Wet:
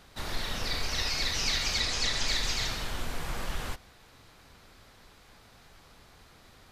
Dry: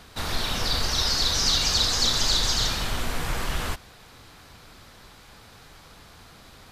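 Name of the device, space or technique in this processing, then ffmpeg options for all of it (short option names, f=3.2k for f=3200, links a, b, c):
octave pedal: -filter_complex "[0:a]asettb=1/sr,asplit=3[a][b][c];[a]atrim=end=1.804[d];[b]atrim=start=1.8:end=2.28,asetpts=PTS-STARTPTS,afade=t=in:d=0.004:c=qsin,afade=t=out:st=0.476:d=0.004:c=qsin,lowpass=f=11k:w=0.5412,lowpass=f=11k:w=1.3066[e];[c]atrim=start=2.276[f];[d][e]acrossfade=d=0.004:c1=hsin:c2=qsin[g];[g][f]acrossfade=d=0.004:c1=qsin:c2=hsin,asplit=2[h][i];[i]asetrate=22050,aresample=44100,atempo=2,volume=-5dB[j];[h][j]amix=inputs=2:normalize=0,volume=-8dB"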